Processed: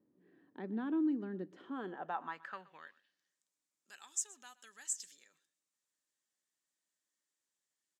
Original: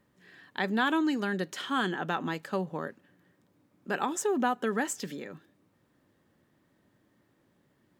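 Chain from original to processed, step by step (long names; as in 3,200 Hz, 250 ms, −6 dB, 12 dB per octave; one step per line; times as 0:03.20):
dynamic equaliser 470 Hz, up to −6 dB, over −41 dBFS, Q 0.73
band-pass filter sweep 310 Hz → 7,300 Hz, 0:01.62–0:03.37
single-tap delay 123 ms −20.5 dB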